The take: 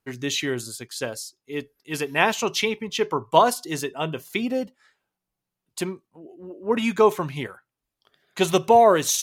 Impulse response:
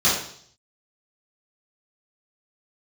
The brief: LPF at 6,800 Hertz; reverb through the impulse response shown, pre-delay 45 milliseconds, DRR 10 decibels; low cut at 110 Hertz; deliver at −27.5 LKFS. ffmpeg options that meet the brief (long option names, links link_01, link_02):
-filter_complex "[0:a]highpass=110,lowpass=6800,asplit=2[link_01][link_02];[1:a]atrim=start_sample=2205,adelay=45[link_03];[link_02][link_03]afir=irnorm=-1:irlink=0,volume=-27.5dB[link_04];[link_01][link_04]amix=inputs=2:normalize=0,volume=-4.5dB"